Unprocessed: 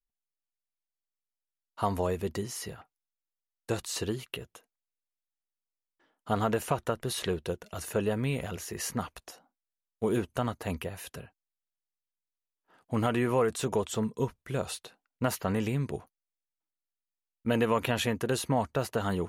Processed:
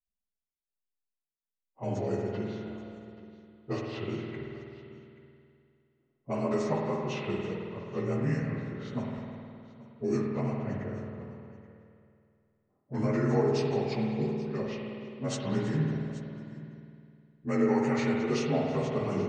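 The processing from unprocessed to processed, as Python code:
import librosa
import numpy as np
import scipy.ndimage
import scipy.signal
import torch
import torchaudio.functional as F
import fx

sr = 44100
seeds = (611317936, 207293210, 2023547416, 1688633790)

p1 = fx.partial_stretch(x, sr, pct=86)
p2 = fx.env_lowpass(p1, sr, base_hz=400.0, full_db=-26.5)
p3 = fx.rotary(p2, sr, hz=5.0)
p4 = p3 + fx.echo_multitap(p3, sr, ms=(329, 830), db=(-19.0, -18.5), dry=0)
y = fx.rev_spring(p4, sr, rt60_s=2.4, pass_ms=(51,), chirp_ms=50, drr_db=-0.5)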